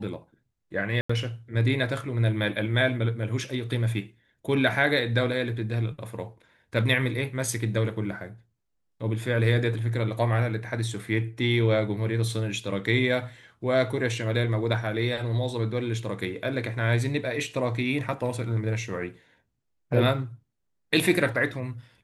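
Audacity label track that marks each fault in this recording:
1.010000	1.090000	dropout 85 ms

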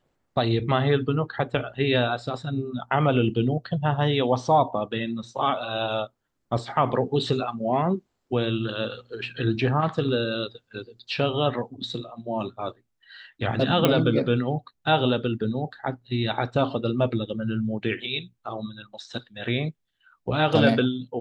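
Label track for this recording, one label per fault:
13.850000	13.850000	pop -6 dBFS

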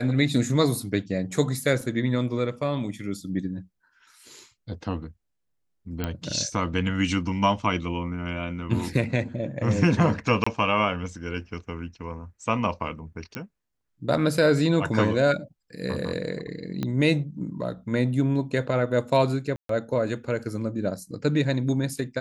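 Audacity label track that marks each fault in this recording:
1.810000	1.810000	dropout 2.5 ms
6.040000	6.040000	pop -14 dBFS
10.440000	10.460000	dropout 25 ms
13.350000	13.350000	pop -17 dBFS
16.830000	16.830000	pop -16 dBFS
19.560000	19.690000	dropout 133 ms

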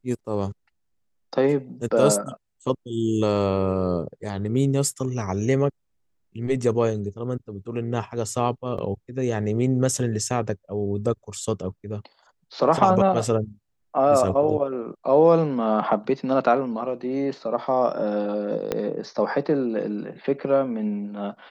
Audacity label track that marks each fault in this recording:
8.780000	8.780000	dropout 4.8 ms
18.720000	18.720000	pop -10 dBFS

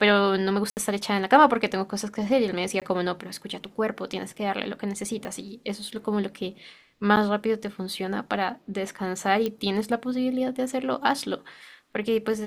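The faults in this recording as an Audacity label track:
0.700000	0.770000	dropout 69 ms
2.800000	2.820000	dropout 17 ms
5.250000	5.250000	pop -21 dBFS
7.160000	7.170000	dropout 8.7 ms
9.460000	9.460000	pop -15 dBFS

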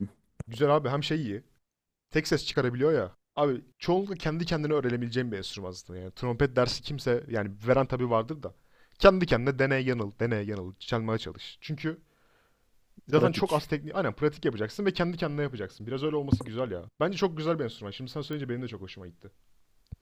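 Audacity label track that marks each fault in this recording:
18.330000	18.330000	pop -24 dBFS

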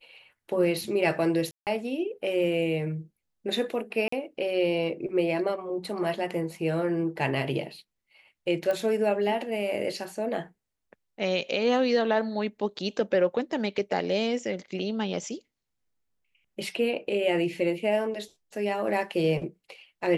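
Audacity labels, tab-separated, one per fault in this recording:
1.510000	1.670000	dropout 158 ms
4.080000	4.120000	dropout 44 ms
8.710000	8.710000	pop -18 dBFS

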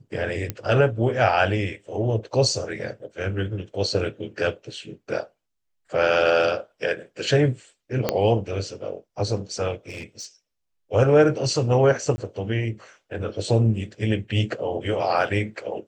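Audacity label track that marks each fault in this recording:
0.500000	0.500000	pop -12 dBFS
8.090000	8.090000	pop -6 dBFS
9.880000	10.260000	clipped -30.5 dBFS
12.160000	12.180000	dropout 20 ms

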